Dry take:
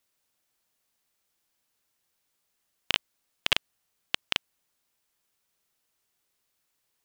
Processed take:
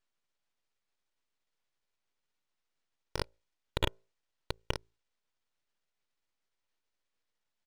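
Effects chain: repeated pitch sweeps -11 st, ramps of 0.362 s; notches 60/120/180/240/300/360 Hz; full-wave rectifier; speed mistake 48 kHz file played as 44.1 kHz; comb 2.1 ms, depth 82%; decimation joined by straight lines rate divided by 3×; gain -8.5 dB

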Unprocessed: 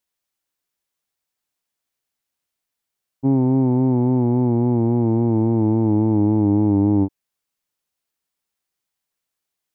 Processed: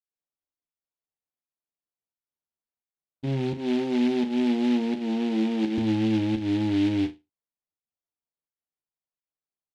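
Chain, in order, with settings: LPF 1100 Hz; spectral noise reduction 6 dB; 3.54–5.78 Chebyshev high-pass 160 Hz, order 5; limiter -12.5 dBFS, peak gain reduction 4 dB; pump 85 bpm, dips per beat 1, -21 dB, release 0.194 s; doubler 13 ms -4 dB; flutter echo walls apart 6.3 m, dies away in 0.23 s; noise-modulated delay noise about 2500 Hz, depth 0.065 ms; gain -6.5 dB

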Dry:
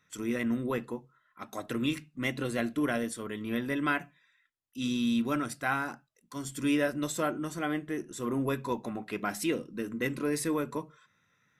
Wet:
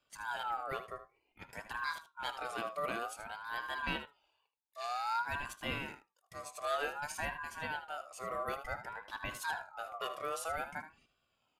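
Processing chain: echo 77 ms -12 dB; ring modulator with a swept carrier 1100 Hz, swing 20%, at 0.54 Hz; gain -5.5 dB

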